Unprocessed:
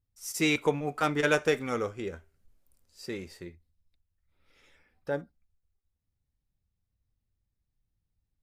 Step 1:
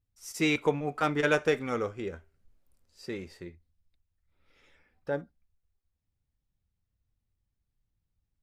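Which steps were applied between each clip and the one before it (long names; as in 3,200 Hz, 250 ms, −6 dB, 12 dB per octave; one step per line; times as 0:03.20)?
high-shelf EQ 6,100 Hz −8.5 dB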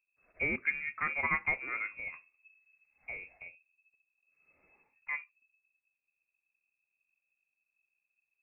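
voice inversion scrambler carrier 2,600 Hz
level −6 dB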